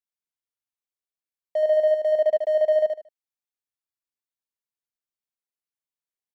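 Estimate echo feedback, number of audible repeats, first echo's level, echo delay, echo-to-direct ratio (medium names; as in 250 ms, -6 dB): 26%, 3, -5.0 dB, 76 ms, -4.5 dB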